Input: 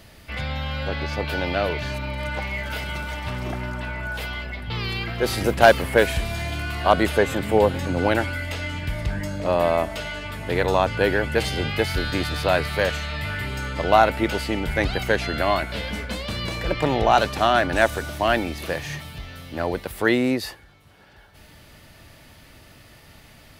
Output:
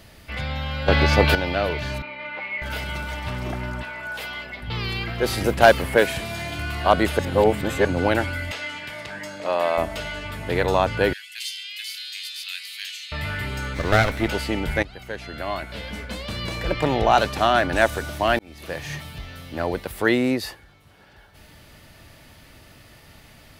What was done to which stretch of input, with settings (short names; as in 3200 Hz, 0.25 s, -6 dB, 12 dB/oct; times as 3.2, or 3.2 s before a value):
0.88–1.35 gain +10 dB
2.02–2.62 speaker cabinet 410–3400 Hz, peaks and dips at 450 Hz -6 dB, 700 Hz -9 dB, 1000 Hz -3 dB, 1600 Hz -6 dB, 2200 Hz +4 dB, 3300 Hz -6 dB
3.82–4.61 HPF 670 Hz -> 260 Hz 6 dB/oct
5.95–6.59 HPF 120 Hz
7.19–7.85 reverse
8.51–9.78 weighting filter A
11.13–13.12 inverse Chebyshev high-pass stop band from 450 Hz, stop band 80 dB
13.74–14.28 minimum comb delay 0.5 ms
14.83–16.69 fade in, from -18.5 dB
18.39–18.93 fade in